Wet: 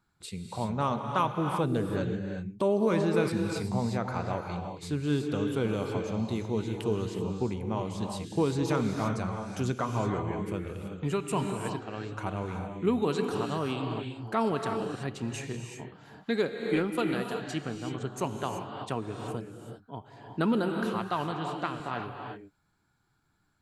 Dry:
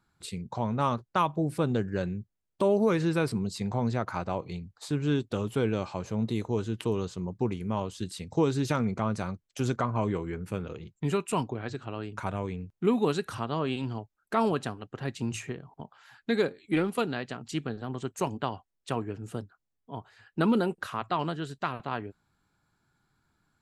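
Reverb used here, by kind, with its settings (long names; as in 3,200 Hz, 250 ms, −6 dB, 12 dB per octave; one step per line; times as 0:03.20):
reverb whose tail is shaped and stops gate 400 ms rising, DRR 3.5 dB
level −2 dB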